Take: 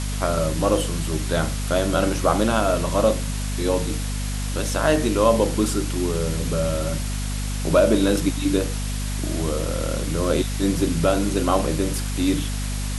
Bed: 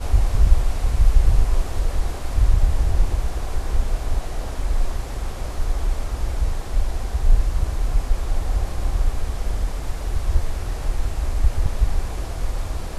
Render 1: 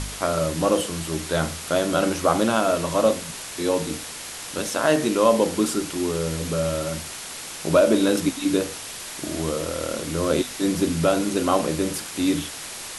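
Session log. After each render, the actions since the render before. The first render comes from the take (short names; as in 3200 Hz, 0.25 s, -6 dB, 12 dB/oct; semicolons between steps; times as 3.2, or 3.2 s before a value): de-hum 50 Hz, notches 5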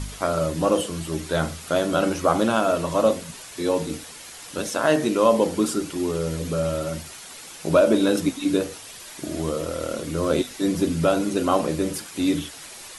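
denoiser 8 dB, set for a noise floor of -36 dBFS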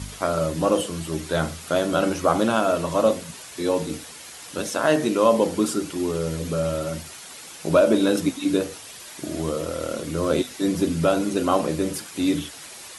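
HPF 58 Hz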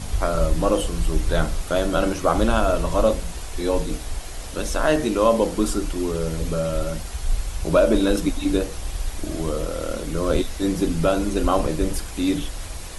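add bed -7.5 dB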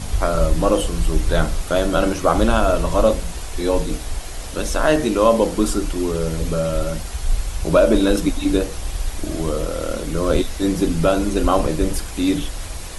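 gain +3 dB; limiter -2 dBFS, peak gain reduction 1 dB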